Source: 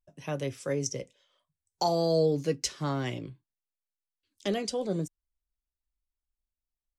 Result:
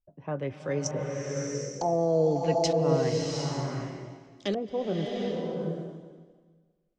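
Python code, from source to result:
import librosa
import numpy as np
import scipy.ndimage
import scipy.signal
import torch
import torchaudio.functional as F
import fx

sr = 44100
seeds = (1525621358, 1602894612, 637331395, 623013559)

y = fx.filter_lfo_lowpass(x, sr, shape='saw_up', hz=1.1, low_hz=560.0, high_hz=6000.0, q=1.1)
y = fx.rev_bloom(y, sr, seeds[0], attack_ms=760, drr_db=0.0)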